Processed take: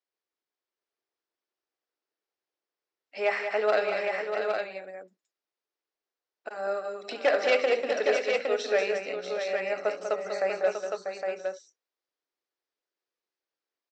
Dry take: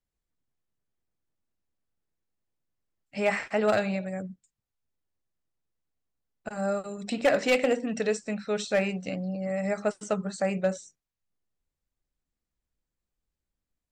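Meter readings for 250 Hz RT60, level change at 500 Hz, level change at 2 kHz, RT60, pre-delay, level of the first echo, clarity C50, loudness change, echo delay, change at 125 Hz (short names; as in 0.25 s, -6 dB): none, +2.0 dB, +2.0 dB, none, none, -15.5 dB, none, 0.0 dB, 71 ms, under -20 dB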